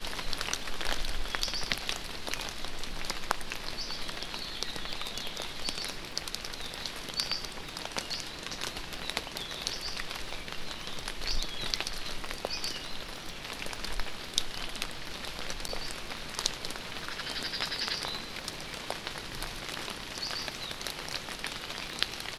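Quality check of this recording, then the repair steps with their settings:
crackle 20/s -41 dBFS
15.68–15.69 gap 9.2 ms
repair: de-click; interpolate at 15.68, 9.2 ms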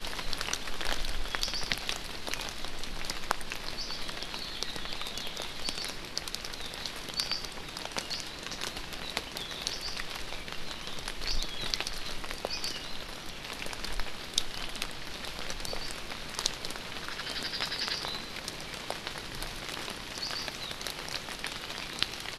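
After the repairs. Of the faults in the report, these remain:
none

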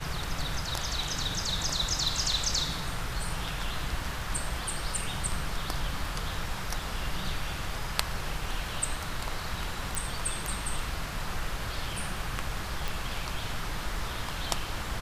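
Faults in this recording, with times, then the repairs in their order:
9.95 pop
12.88 pop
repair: de-click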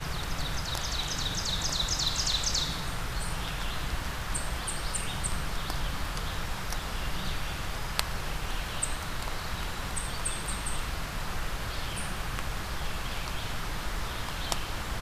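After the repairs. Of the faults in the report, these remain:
none

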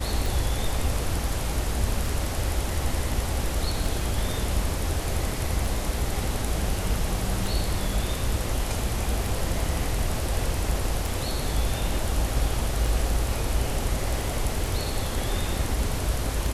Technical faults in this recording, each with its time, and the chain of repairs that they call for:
tick 33 1/3 rpm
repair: de-click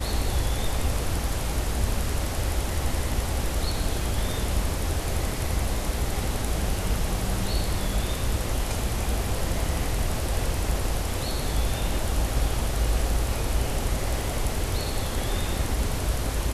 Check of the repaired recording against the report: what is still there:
none

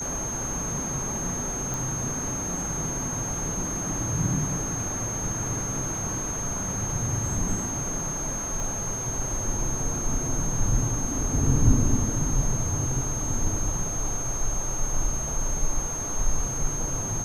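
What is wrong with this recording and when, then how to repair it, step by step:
tone 6400 Hz -30 dBFS
1.74 pop
8.6 pop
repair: de-click; notch 6400 Hz, Q 30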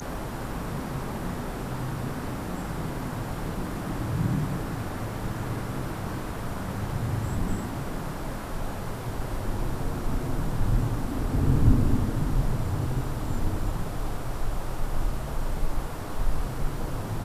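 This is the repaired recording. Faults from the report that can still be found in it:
8.6 pop

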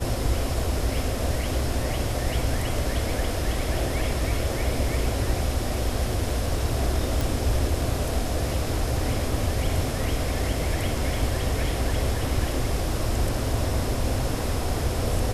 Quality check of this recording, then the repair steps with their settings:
7.21 pop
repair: de-click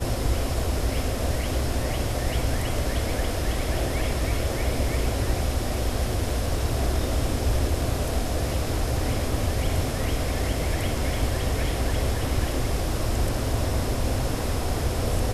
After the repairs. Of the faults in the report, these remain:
none

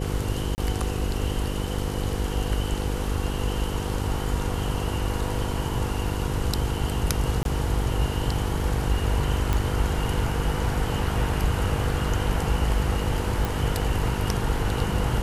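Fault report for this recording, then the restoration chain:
buzz 50 Hz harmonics 10 -30 dBFS
0.55–0.58 gap 29 ms
7.43–7.45 gap 22 ms
9.53 pop
13.45 pop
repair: de-click; de-hum 50 Hz, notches 10; interpolate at 0.55, 29 ms; interpolate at 7.43, 22 ms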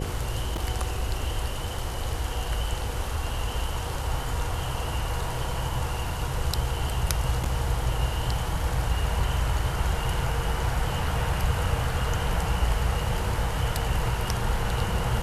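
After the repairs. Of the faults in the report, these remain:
none

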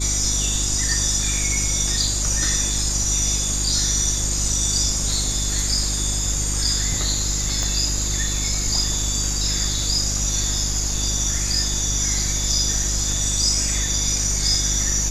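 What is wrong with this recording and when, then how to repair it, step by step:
hum 50 Hz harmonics 7 -26 dBFS
7.63 pop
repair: de-click; de-hum 50 Hz, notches 7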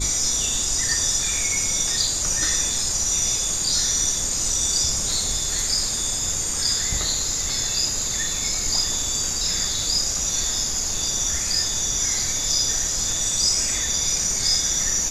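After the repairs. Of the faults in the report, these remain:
7.63 pop

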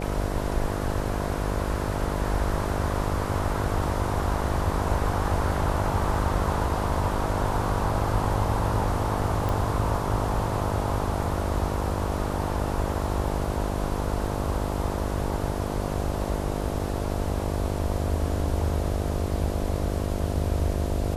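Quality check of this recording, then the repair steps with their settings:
buzz 50 Hz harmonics 14 -30 dBFS
9.49 pop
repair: de-click; de-hum 50 Hz, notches 14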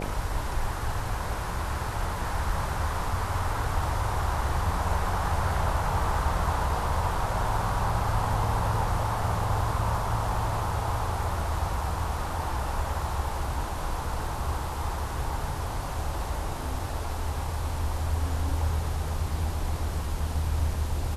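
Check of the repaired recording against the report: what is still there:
none

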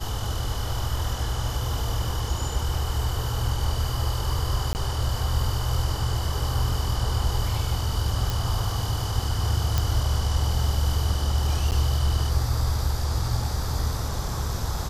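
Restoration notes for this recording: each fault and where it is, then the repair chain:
4.73–4.75 gap 19 ms
8.3 pop
9.78 pop
11.71–11.72 gap 9.1 ms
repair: de-click; interpolate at 4.73, 19 ms; interpolate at 11.71, 9.1 ms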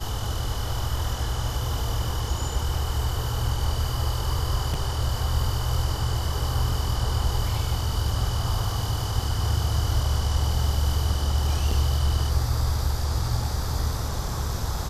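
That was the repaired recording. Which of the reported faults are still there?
none

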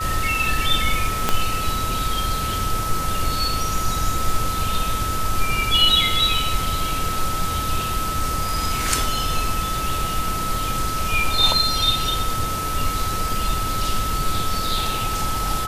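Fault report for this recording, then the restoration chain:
tone 1300 Hz -25 dBFS
1.29 pop -3 dBFS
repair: de-click; notch 1300 Hz, Q 30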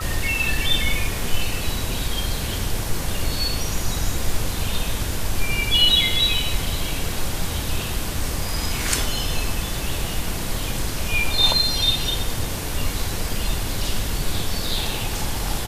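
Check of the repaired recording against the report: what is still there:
1.29 pop

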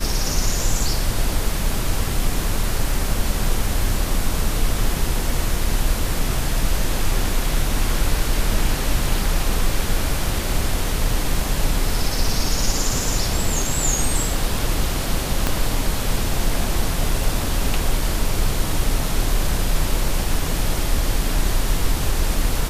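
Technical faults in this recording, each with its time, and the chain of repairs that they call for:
15.47 pop -4 dBFS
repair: de-click

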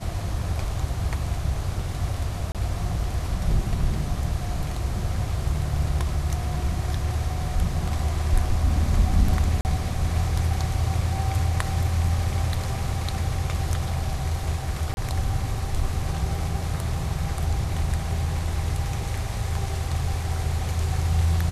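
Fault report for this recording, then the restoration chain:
2.52–2.55 gap 27 ms
9.61–9.65 gap 39 ms
14.94–14.97 gap 31 ms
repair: interpolate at 2.52, 27 ms; interpolate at 9.61, 39 ms; interpolate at 14.94, 31 ms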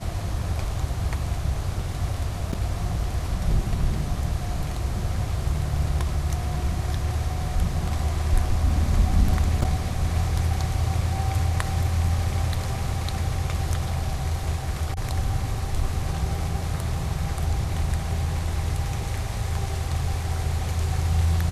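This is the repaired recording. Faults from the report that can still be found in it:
none

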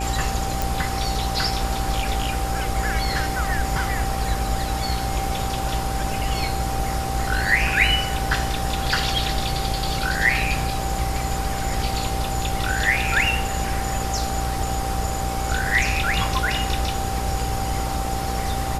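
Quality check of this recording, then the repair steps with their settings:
buzz 60 Hz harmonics 14 -28 dBFS
tone 780 Hz -29 dBFS
0.62 pop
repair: de-click; notch 780 Hz, Q 30; de-hum 60 Hz, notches 14

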